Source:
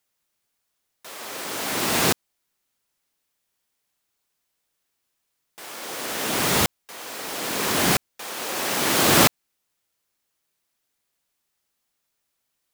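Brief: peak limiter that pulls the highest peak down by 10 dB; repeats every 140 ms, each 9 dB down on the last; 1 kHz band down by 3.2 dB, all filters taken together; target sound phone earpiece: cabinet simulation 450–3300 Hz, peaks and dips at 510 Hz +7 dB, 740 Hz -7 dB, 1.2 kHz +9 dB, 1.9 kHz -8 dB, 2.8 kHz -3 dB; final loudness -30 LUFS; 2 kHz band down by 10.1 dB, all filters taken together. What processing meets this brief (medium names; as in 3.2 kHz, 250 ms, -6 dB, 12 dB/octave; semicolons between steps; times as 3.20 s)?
peaking EQ 1 kHz -4.5 dB; peaking EQ 2 kHz -8.5 dB; peak limiter -15 dBFS; cabinet simulation 450–3300 Hz, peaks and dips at 510 Hz +7 dB, 740 Hz -7 dB, 1.2 kHz +9 dB, 1.9 kHz -8 dB, 2.8 kHz -3 dB; feedback delay 140 ms, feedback 35%, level -9 dB; trim +3 dB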